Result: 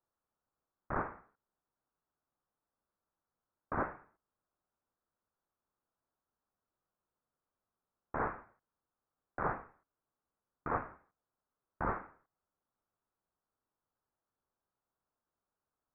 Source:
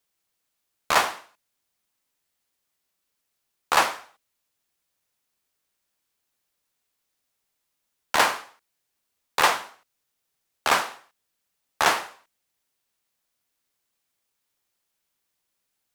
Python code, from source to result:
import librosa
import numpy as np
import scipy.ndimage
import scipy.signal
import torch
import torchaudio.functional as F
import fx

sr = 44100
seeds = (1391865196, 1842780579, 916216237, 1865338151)

y = (np.mod(10.0 ** (15.5 / 20.0) * x + 1.0, 2.0) - 1.0) / 10.0 ** (15.5 / 20.0)
y = scipy.signal.sosfilt(scipy.signal.ellip(4, 1.0, 60, 2700.0, 'highpass', fs=sr, output='sos'), y)
y = fx.freq_invert(y, sr, carrier_hz=4000)
y = y * 10.0 ** (-2.5 / 20.0)